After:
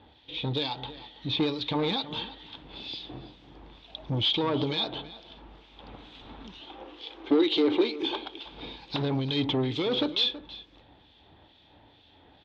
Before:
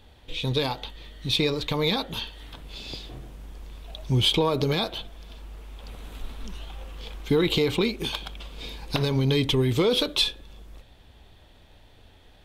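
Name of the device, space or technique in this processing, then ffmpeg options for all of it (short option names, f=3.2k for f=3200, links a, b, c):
guitar amplifier with harmonic tremolo: -filter_complex "[0:a]acrossover=split=2200[a][b];[a]aeval=exprs='val(0)*(1-0.7/2+0.7/2*cos(2*PI*2.2*n/s))':c=same[c];[b]aeval=exprs='val(0)*(1-0.7/2-0.7/2*cos(2*PI*2.2*n/s))':c=same[d];[c][d]amix=inputs=2:normalize=0,asoftclip=type=tanh:threshold=-24.5dB,highpass=88,equalizer=f=300:t=q:w=4:g=8,equalizer=f=860:t=q:w=4:g=7,equalizer=f=3.5k:t=q:w=4:g=6,lowpass=f=4.5k:w=0.5412,lowpass=f=4.5k:w=1.3066,asettb=1/sr,asplit=3[e][f][g];[e]atrim=end=6.614[h];[f]atrim=start=6.61:end=8.46,asetpts=PTS-STARTPTS,afade=t=in:d=0.004:c=qsin,afade=t=out:st=1.846:d=0.004:c=qsin,lowshelf=f=240:t=q:w=3:g=-10[i];[g]atrim=start=8.456[j];[h][i]acrossfade=d=0.004:c1=hsin:c2=qsin[k];[k][j]acrossfade=d=0.004:c1=qsin:c2=hsin,asplit=2[l][m];[m]adelay=326.5,volume=-15dB,highshelf=f=4k:g=-7.35[n];[l][n]amix=inputs=2:normalize=0"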